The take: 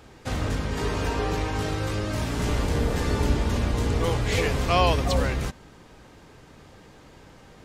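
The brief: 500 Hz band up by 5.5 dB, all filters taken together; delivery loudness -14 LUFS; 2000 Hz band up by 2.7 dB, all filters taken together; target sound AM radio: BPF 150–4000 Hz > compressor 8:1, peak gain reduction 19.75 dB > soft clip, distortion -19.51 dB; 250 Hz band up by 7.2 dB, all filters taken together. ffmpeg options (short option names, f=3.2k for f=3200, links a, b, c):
-af "highpass=150,lowpass=4k,equalizer=f=250:t=o:g=8.5,equalizer=f=500:t=o:g=4,equalizer=f=2k:t=o:g=3.5,acompressor=threshold=-34dB:ratio=8,asoftclip=threshold=-29.5dB,volume=25.5dB"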